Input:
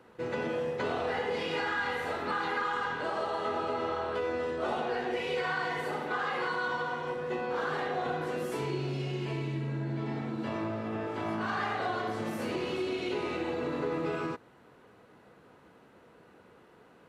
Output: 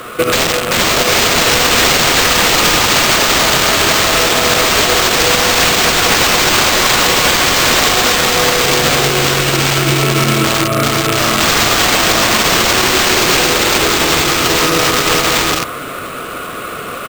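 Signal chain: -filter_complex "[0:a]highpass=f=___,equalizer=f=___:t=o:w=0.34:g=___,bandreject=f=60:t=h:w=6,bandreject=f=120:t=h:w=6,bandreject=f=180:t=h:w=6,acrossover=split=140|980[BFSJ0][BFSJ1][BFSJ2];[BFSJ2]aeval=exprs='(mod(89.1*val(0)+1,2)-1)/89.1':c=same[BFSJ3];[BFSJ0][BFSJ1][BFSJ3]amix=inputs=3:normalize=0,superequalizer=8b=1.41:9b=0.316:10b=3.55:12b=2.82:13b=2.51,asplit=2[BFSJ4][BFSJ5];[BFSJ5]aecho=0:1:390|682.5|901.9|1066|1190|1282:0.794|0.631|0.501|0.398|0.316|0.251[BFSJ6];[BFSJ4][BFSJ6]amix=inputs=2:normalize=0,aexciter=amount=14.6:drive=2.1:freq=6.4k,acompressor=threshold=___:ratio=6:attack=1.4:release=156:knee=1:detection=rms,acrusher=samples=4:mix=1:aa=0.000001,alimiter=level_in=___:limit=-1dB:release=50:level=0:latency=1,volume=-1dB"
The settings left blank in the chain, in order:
42, 210, -4.5, -30dB, 26.5dB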